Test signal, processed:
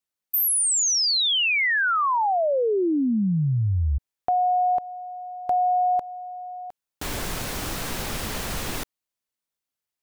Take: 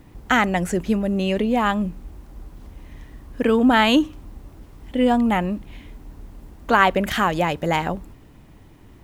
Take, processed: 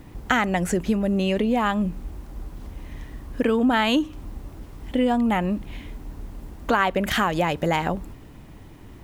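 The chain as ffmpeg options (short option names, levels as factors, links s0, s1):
-af "acompressor=threshold=0.0631:ratio=2.5,volume=1.5"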